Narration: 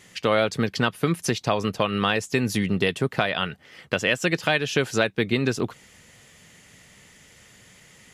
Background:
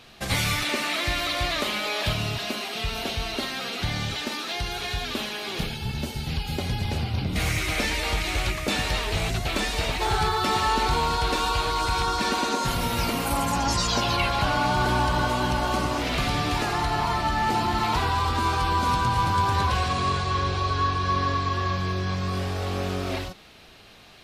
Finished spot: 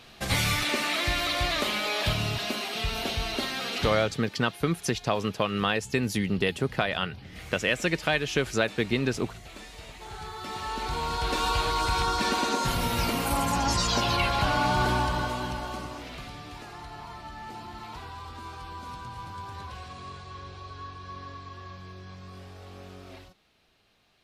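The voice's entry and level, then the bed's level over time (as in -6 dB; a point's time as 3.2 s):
3.60 s, -3.5 dB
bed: 3.85 s -1 dB
4.22 s -18.5 dB
10.02 s -18.5 dB
11.48 s -1.5 dB
14.84 s -1.5 dB
16.38 s -17 dB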